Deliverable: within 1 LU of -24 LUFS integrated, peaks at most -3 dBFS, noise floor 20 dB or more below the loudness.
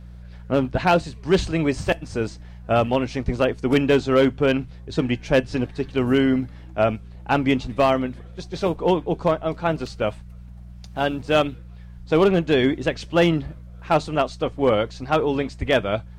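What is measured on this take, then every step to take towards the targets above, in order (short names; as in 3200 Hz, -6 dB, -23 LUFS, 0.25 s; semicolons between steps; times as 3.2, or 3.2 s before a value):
clipped 0.8%; flat tops at -10.0 dBFS; hum 60 Hz; harmonics up to 180 Hz; hum level -38 dBFS; loudness -22.0 LUFS; peak -10.0 dBFS; loudness target -24.0 LUFS
-> clip repair -10 dBFS; de-hum 60 Hz, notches 3; gain -2 dB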